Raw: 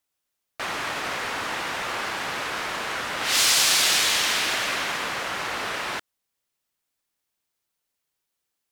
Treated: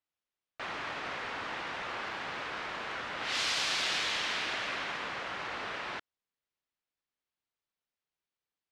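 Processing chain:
low-pass filter 4,100 Hz 12 dB per octave
0:01.84–0:04.52: surface crackle 24 per second −44 dBFS
level −8.5 dB

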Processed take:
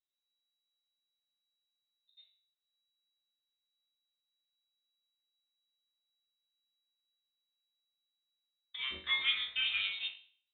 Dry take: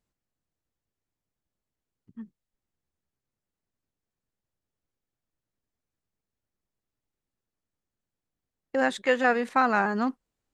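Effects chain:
resonators tuned to a chord G2 major, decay 0.51 s
dynamic equaliser 1,800 Hz, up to +3 dB, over −53 dBFS, Q 1.2
in parallel at −6 dB: dead-zone distortion −49.5 dBFS
on the sum: voice inversion scrambler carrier 3,900 Hz
level +1 dB

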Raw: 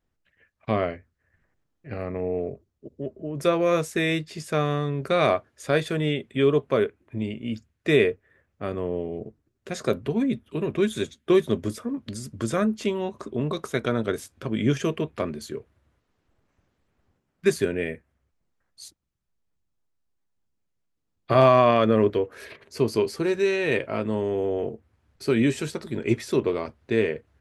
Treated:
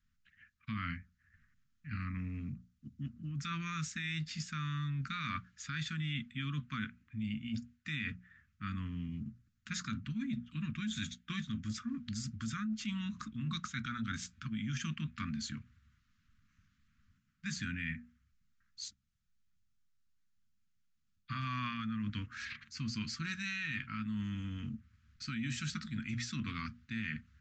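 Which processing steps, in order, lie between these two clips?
elliptic band-stop filter 230–1,300 Hz, stop band 40 dB
mains-hum notches 60/120/180/240 Hz
brickwall limiter −23.5 dBFS, peak gain reduction 10 dB
reversed playback
downward compressor, threshold −36 dBFS, peak gain reduction 9.5 dB
reversed playback
downsampling to 16,000 Hz
level +1 dB

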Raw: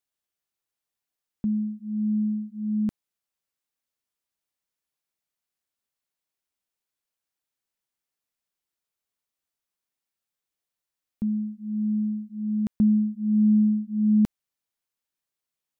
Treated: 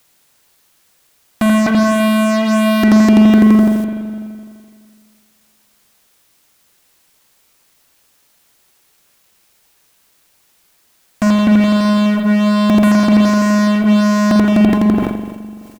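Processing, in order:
source passing by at 0:05.53, 7 m/s, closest 7.5 metres
dynamic equaliser 500 Hz, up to +6 dB, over −54 dBFS, Q 0.78
comb filter 2.9 ms, depth 41%
echo machine with several playback heads 84 ms, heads first and third, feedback 55%, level −9 dB
in parallel at +0.5 dB: downward compressor, threshold −50 dBFS, peak gain reduction 16 dB
on the sum: fuzz pedal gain 56 dB, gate −59 dBFS
low-shelf EQ 120 Hz −8 dB
on a send at −5 dB: convolution reverb RT60 2.0 s, pre-delay 42 ms
on the sum: bit-depth reduction 10 bits, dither triangular
level that may fall only so fast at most 42 dB per second
level +3.5 dB

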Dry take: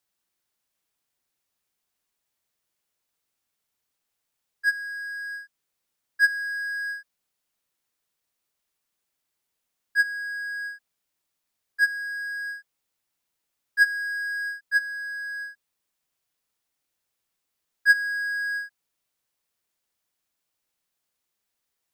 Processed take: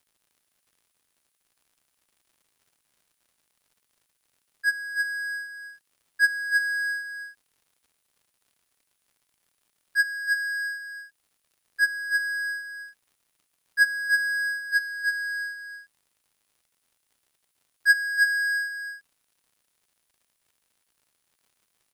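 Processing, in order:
high-pass filter 1,500 Hz
parametric band 9,800 Hz +9.5 dB 0.31 octaves
surface crackle 97 per second −55 dBFS
single-tap delay 320 ms −5.5 dB
level +1.5 dB

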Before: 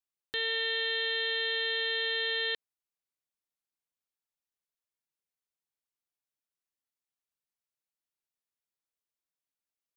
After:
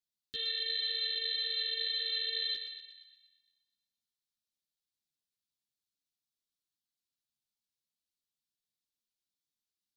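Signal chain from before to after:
octave-band graphic EQ 125/250/500/1,000/2,000/4,000 Hz +7/+5/−6/−11/−7/+9 dB
brickwall limiter −24.5 dBFS, peak gain reduction 3.5 dB
Butterworth band-reject 840 Hz, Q 1.3
on a send: feedback echo with a high-pass in the loop 119 ms, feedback 57%, high-pass 610 Hz, level −6.5 dB
on the sum: string-ensemble chorus

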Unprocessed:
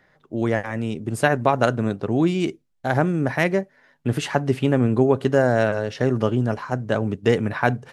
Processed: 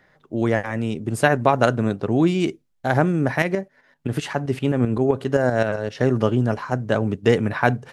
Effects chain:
0:03.42–0:06.02: shaped tremolo saw up 7.7 Hz, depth 60%
level +1.5 dB

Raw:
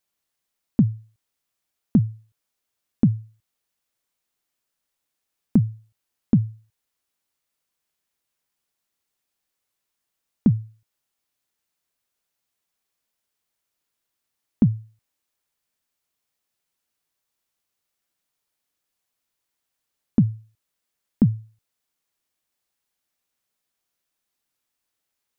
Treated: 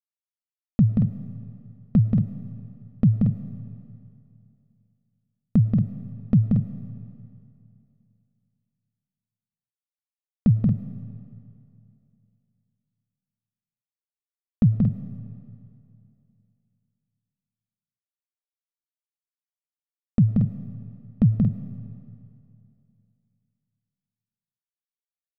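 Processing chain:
downward expander −48 dBFS
low-shelf EQ 390 Hz +7.5 dB
comb filter 1.6 ms, depth 74%
loudspeakers that aren't time-aligned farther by 62 metres −4 dB, 79 metres −8 dB
comb and all-pass reverb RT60 2.6 s, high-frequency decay 0.9×, pre-delay 65 ms, DRR 12.5 dB
level −7 dB

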